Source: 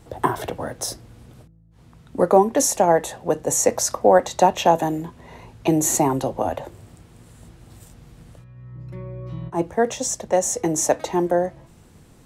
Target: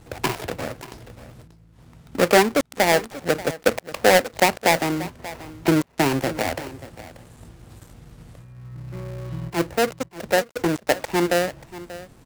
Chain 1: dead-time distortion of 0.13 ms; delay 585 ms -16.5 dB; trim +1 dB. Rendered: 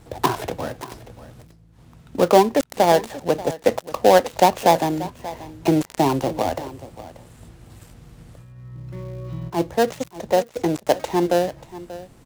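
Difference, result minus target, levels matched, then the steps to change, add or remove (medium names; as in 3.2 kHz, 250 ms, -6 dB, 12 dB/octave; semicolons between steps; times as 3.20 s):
dead-time distortion: distortion -7 dB
change: dead-time distortion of 0.37 ms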